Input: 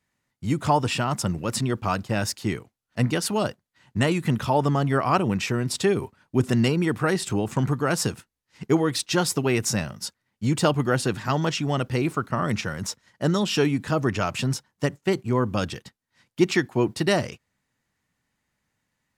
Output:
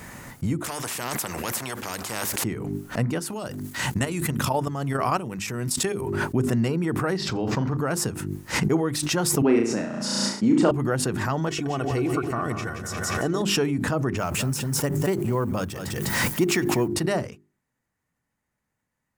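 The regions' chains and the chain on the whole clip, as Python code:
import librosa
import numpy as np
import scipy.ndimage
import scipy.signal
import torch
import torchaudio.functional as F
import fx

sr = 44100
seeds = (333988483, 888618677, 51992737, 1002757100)

y = fx.chain(x, sr, fx.highpass(hz=270.0, slope=6),
    fx.spectral_comp(ratio=4.0), at=(0.64, 2.44))
y = fx.chain(y, sr, fx.level_steps(step_db=10),
    fx.high_shelf(hz=2700.0, db=11.5), at=(3.29, 6.01))
y = fx.chain(y, sr, fx.high_shelf_res(hz=6700.0, db=-12.0, q=3.0),
    fx.room_flutter(wall_m=7.3, rt60_s=0.27), at=(7.17, 7.77))
y = fx.chain(y, sr, fx.highpass_res(hz=270.0, q=2.5),
    fx.air_absorb(metres=95.0),
    fx.room_flutter(wall_m=6.0, rt60_s=0.51), at=(9.42, 10.71))
y = fx.chain(y, sr, fx.comb(ms=2.7, depth=0.52),
    fx.echo_split(split_hz=560.0, low_ms=103, high_ms=176, feedback_pct=52, wet_db=-8.0), at=(11.48, 13.42))
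y = fx.chain(y, sr, fx.law_mismatch(coded='mu'),
    fx.high_shelf(hz=9000.0, db=10.5),
    fx.echo_single(ms=202, db=-15.5), at=(14.17, 16.88))
y = fx.peak_eq(y, sr, hz=3800.0, db=-9.0, octaves=1.6)
y = fx.hum_notches(y, sr, base_hz=50, count=8)
y = fx.pre_swell(y, sr, db_per_s=25.0)
y = F.gain(torch.from_numpy(y), -2.0).numpy()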